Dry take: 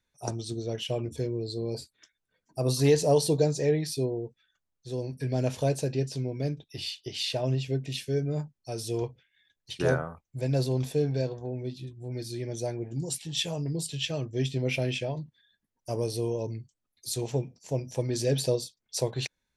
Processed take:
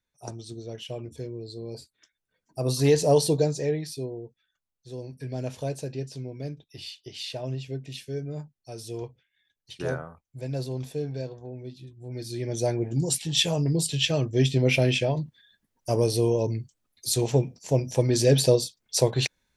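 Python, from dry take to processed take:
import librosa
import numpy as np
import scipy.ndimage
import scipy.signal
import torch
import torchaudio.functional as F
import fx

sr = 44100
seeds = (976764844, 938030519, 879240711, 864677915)

y = fx.gain(x, sr, db=fx.line((1.63, -5.0), (3.19, 3.0), (4.0, -4.5), (11.86, -4.5), (12.69, 7.0)))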